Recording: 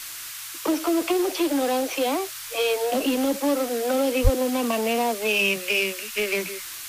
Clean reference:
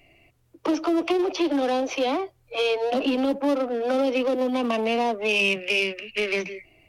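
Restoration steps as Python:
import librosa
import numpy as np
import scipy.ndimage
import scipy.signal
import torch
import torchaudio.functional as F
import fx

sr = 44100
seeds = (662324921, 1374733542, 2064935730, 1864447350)

y = fx.highpass(x, sr, hz=140.0, slope=24, at=(4.23, 4.35), fade=0.02)
y = fx.noise_reduce(y, sr, print_start_s=0.05, print_end_s=0.55, reduce_db=21.0)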